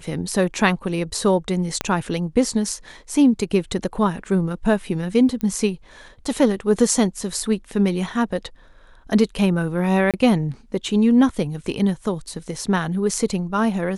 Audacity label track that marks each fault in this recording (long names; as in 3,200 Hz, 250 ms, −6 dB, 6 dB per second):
1.810000	1.810000	click −7 dBFS
5.410000	5.410000	click −14 dBFS
10.110000	10.140000	drop-out 27 ms